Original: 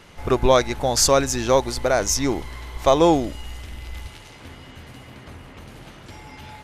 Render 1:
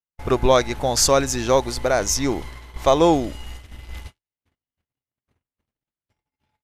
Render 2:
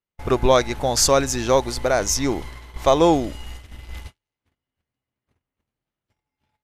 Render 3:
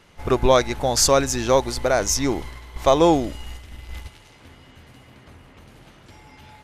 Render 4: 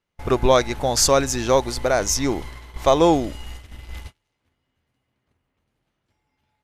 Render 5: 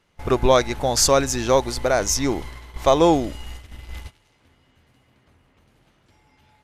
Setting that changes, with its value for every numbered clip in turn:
gate, range: -57, -45, -6, -33, -18 dB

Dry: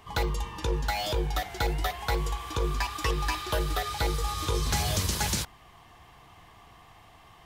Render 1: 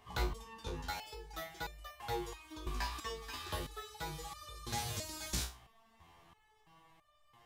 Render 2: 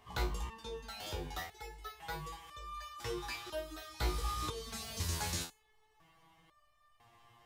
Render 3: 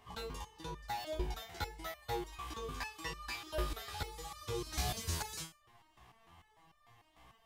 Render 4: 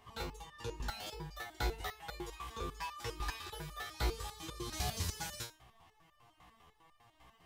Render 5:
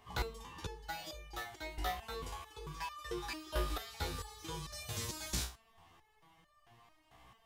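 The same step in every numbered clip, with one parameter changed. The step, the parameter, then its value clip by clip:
stepped resonator, rate: 3, 2, 6.7, 10, 4.5 Hz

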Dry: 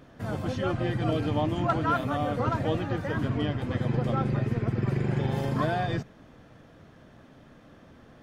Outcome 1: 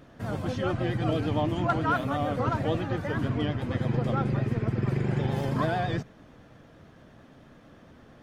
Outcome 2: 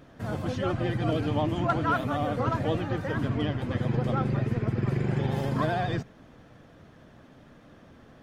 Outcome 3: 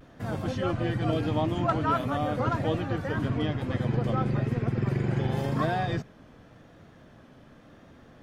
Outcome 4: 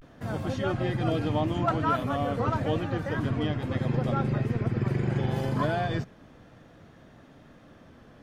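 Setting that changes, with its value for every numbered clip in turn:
vibrato, rate: 8.9, 13, 0.92, 0.32 Hz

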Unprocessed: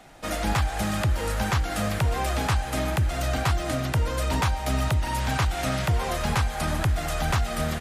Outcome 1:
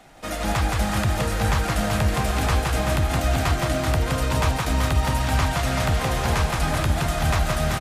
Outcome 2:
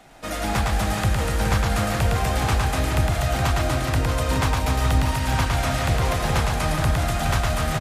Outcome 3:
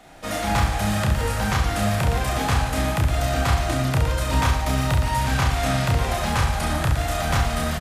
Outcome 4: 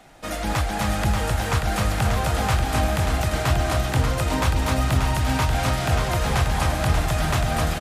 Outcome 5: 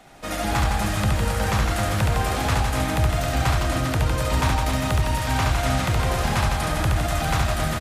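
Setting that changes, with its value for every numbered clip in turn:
reverse bouncing-ball echo, first gap: 170, 110, 30, 260, 70 ms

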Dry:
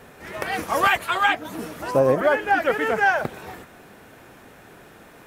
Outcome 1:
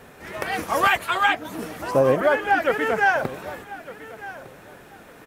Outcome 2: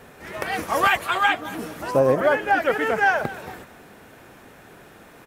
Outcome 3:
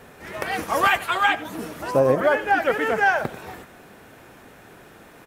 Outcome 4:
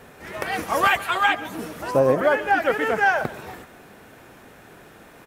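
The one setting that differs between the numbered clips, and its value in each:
feedback echo, time: 1206, 227, 91, 139 ms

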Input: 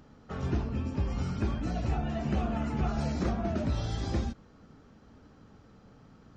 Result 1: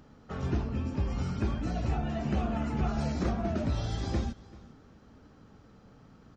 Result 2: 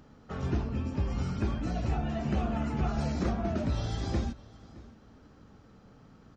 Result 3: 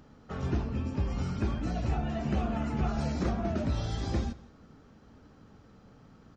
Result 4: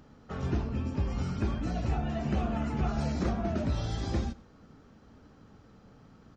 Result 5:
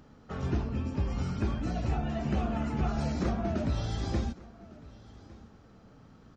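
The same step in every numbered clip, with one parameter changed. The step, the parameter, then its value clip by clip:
feedback echo, time: 387, 617, 168, 97, 1155 ms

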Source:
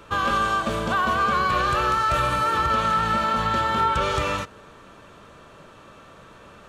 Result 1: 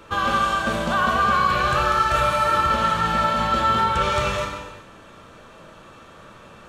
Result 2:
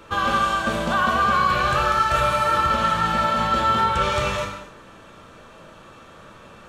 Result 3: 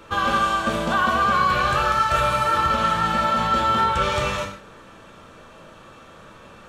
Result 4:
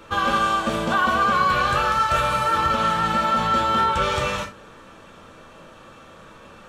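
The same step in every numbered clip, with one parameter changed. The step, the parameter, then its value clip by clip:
non-linear reverb, gate: 0.45, 0.31, 0.19, 0.1 s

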